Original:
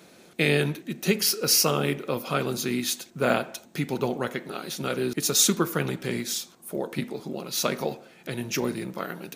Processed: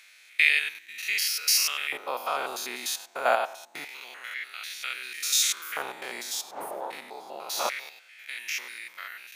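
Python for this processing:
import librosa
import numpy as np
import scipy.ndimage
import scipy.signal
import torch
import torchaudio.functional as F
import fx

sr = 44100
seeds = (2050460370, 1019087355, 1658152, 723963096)

y = fx.spec_steps(x, sr, hold_ms=100)
y = fx.dmg_wind(y, sr, seeds[0], corner_hz=350.0, level_db=-36.0, at=(6.32, 7.7), fade=0.02)
y = fx.filter_lfo_highpass(y, sr, shape='square', hz=0.26, low_hz=810.0, high_hz=2100.0, q=2.9)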